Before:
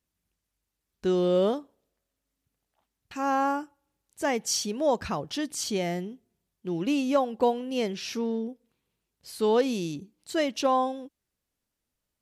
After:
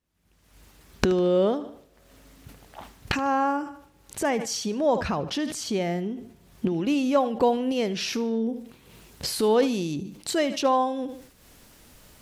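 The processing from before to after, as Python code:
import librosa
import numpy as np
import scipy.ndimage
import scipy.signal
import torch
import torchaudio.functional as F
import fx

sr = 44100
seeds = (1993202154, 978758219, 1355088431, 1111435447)

y = fx.recorder_agc(x, sr, target_db=-21.5, rise_db_per_s=50.0, max_gain_db=30)
y = fx.high_shelf(y, sr, hz=4300.0, db=fx.steps((0.0, -8.0), (6.7, -2.5)))
y = fx.echo_feedback(y, sr, ms=75, feedback_pct=40, wet_db=-18.0)
y = fx.sustainer(y, sr, db_per_s=99.0)
y = y * librosa.db_to_amplitude(2.0)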